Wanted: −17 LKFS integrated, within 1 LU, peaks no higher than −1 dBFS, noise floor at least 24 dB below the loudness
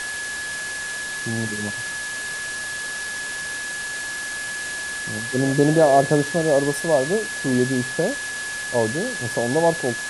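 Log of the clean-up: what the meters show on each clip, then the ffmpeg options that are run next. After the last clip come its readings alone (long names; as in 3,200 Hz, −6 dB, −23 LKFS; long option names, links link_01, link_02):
interfering tone 1,700 Hz; level of the tone −28 dBFS; background noise floor −30 dBFS; target noise floor −47 dBFS; integrated loudness −22.5 LKFS; sample peak −4.0 dBFS; target loudness −17.0 LKFS
→ -af "bandreject=frequency=1700:width=30"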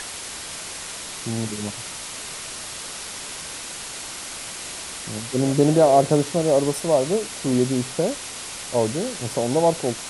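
interfering tone none found; background noise floor −35 dBFS; target noise floor −48 dBFS
→ -af "afftdn=noise_reduction=13:noise_floor=-35"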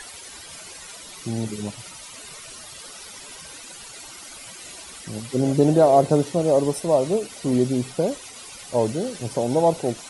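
background noise floor −41 dBFS; target noise floor −46 dBFS
→ -af "afftdn=noise_reduction=6:noise_floor=-41"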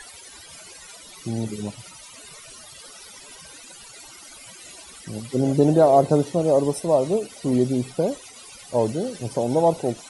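background noise floor −44 dBFS; target noise floor −46 dBFS
→ -af "afftdn=noise_reduction=6:noise_floor=-44"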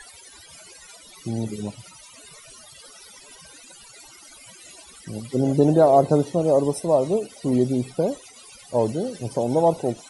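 background noise floor −47 dBFS; integrated loudness −21.5 LKFS; sample peak −4.5 dBFS; target loudness −17.0 LKFS
→ -af "volume=4.5dB,alimiter=limit=-1dB:level=0:latency=1"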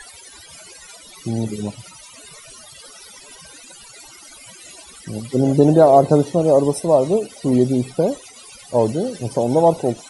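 integrated loudness −17.5 LKFS; sample peak −1.0 dBFS; background noise floor −43 dBFS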